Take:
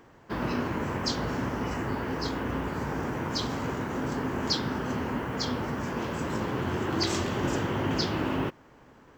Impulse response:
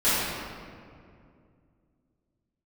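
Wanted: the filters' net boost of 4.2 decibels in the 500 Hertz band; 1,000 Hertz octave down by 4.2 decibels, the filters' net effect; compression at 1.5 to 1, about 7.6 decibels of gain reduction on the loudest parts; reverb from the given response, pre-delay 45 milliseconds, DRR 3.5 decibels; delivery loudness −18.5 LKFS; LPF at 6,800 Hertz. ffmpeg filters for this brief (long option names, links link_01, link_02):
-filter_complex "[0:a]lowpass=6800,equalizer=frequency=500:width_type=o:gain=7,equalizer=frequency=1000:width_type=o:gain=-7.5,acompressor=threshold=-45dB:ratio=1.5,asplit=2[link_01][link_02];[1:a]atrim=start_sample=2205,adelay=45[link_03];[link_02][link_03]afir=irnorm=-1:irlink=0,volume=-20.5dB[link_04];[link_01][link_04]amix=inputs=2:normalize=0,volume=16dB"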